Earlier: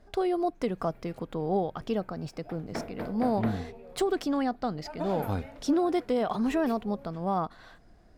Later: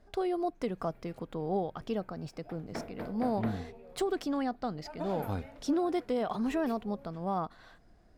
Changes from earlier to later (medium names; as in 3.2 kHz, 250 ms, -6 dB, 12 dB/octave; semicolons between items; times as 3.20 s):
speech -4.0 dB; background -4.0 dB